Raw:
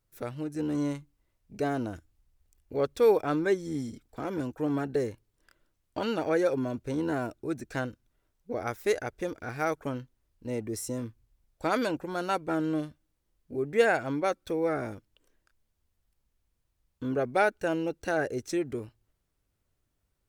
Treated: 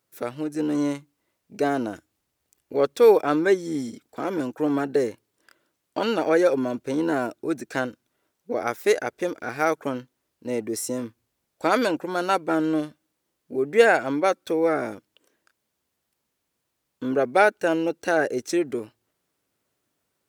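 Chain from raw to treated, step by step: HPF 220 Hz 12 dB/oct; gain +7 dB

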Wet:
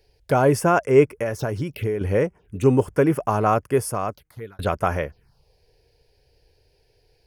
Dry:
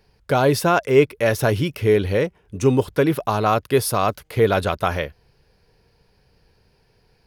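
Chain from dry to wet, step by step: 1.15–2.01 compressor 6:1, threshold -22 dBFS, peak gain reduction 10 dB; 3.51–4.59 fade out; envelope phaser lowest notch 190 Hz, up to 3900 Hz, full sweep at -22 dBFS

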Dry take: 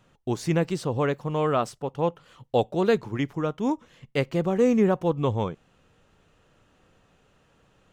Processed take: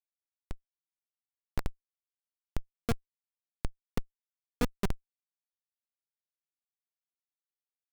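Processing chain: envelope flanger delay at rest 2.8 ms, full sweep at -18.5 dBFS; added harmonics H 2 -13 dB, 3 -10 dB, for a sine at -10 dBFS; echo 1.082 s -4.5 dB; on a send at -16.5 dB: reverb RT60 3.1 s, pre-delay 7 ms; on the sum: Schmitt trigger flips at -21.5 dBFS; gain +14 dB

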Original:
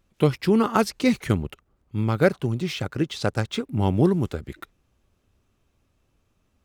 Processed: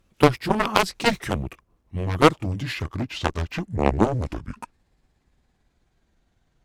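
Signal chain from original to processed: gliding pitch shift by -9.5 st starting unshifted; added harmonics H 7 -11 dB, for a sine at -4.5 dBFS; gain +3.5 dB

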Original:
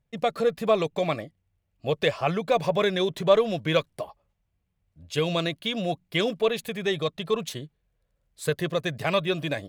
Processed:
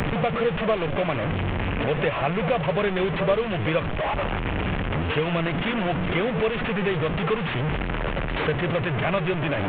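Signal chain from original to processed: delta modulation 16 kbps, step -21.5 dBFS; pre-echo 84 ms -13.5 dB; three-band squash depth 70%

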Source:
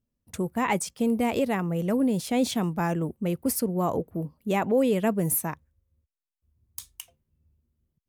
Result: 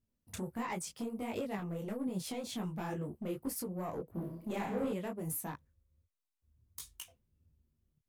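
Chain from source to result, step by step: 1.58–2.07 HPF 130 Hz; compressor 10:1, threshold -31 dBFS, peak gain reduction 13.5 dB; overloaded stage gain 28 dB; 2.88–3.51 doubler 14 ms -7 dB; 4.15–4.92 flutter echo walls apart 5.1 m, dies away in 0.68 s; soft clip -27 dBFS, distortion -18 dB; detuned doubles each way 50 cents; gain +1 dB

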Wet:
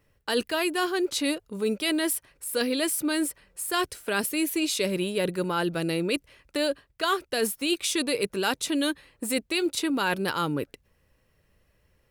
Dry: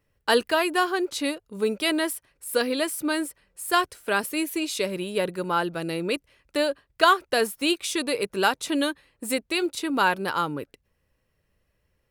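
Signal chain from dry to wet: dynamic EQ 970 Hz, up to -7 dB, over -35 dBFS, Q 0.71; reverse; compressor 6:1, threshold -28 dBFS, peak gain reduction 11.5 dB; reverse; gain +5.5 dB

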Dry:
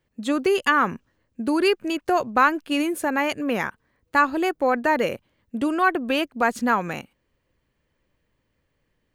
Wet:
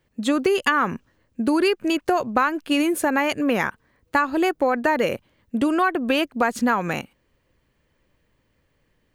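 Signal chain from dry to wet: compressor 6:1, threshold -21 dBFS, peak gain reduction 9 dB; gain +5 dB

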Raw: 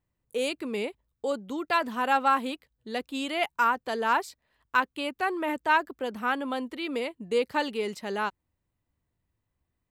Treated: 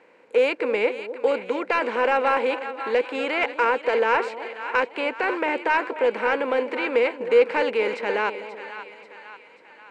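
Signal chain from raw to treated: per-bin compression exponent 0.6; speaker cabinet 220–8800 Hz, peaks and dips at 490 Hz +9 dB, 710 Hz -5 dB, 1200 Hz -7 dB, 2300 Hz +10 dB, 3500 Hz -3 dB; on a send: split-band echo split 810 Hz, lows 0.252 s, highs 0.536 s, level -11.5 dB; on the sum: overdrive pedal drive 9 dB, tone 1100 Hz, clips at -6.5 dBFS; gain +1.5 dB

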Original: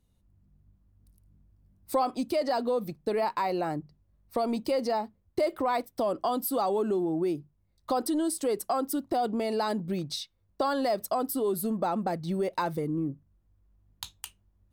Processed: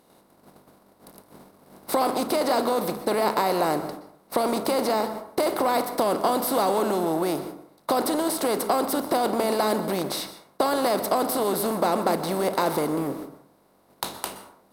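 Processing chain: per-bin compression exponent 0.4; gate -37 dBFS, range -19 dB; low shelf 190 Hz -7 dB; plate-style reverb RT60 0.61 s, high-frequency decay 0.5×, pre-delay 0.11 s, DRR 11 dB

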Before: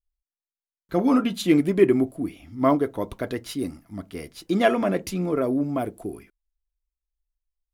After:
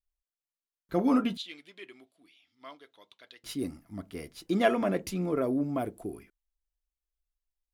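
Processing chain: 1.37–3.44 band-pass 3600 Hz, Q 2.6; gain -5 dB

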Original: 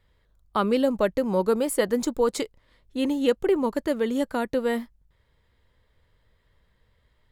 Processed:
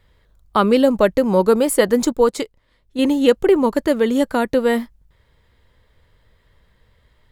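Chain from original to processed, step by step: 2.12–2.99 upward expander 1.5:1, over -35 dBFS; gain +8 dB

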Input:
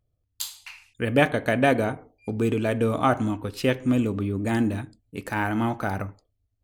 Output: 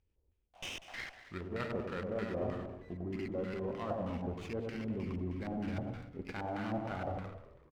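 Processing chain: speed glide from 74% -> 98%; high shelf 8400 Hz +11 dB; reverse; compressor 12:1, threshold -34 dBFS, peak gain reduction 21 dB; reverse; bouncing-ball echo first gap 0.1 s, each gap 0.7×, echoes 5; LFO low-pass square 3.2 Hz 690–2800 Hz; on a send: frequency-shifting echo 0.193 s, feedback 47%, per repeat -82 Hz, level -14.5 dB; on the sum: running maximum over 5 samples; gain -4 dB

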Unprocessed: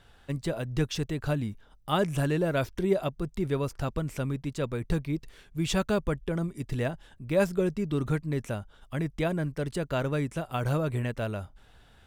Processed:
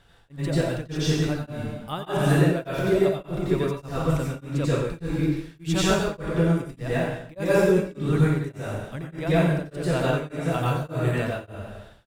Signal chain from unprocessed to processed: reverb RT60 1.1 s, pre-delay 84 ms, DRR -8 dB; beating tremolo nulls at 1.7 Hz

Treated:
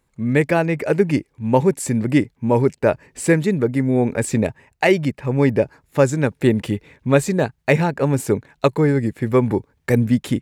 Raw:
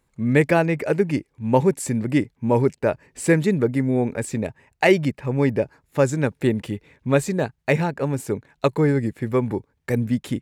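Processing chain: vocal rider within 4 dB 0.5 s; gain +3 dB

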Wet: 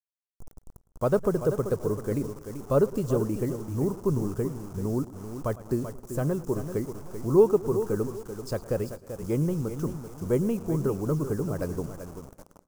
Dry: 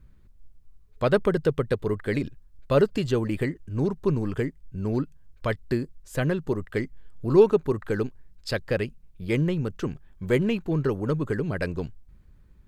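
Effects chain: feedback echo 0.387 s, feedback 25%, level -10 dB; bit-crush 7-bit; band shelf 2700 Hz -15.5 dB; warbling echo 0.108 s, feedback 55%, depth 113 cents, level -19 dB; gain -2 dB

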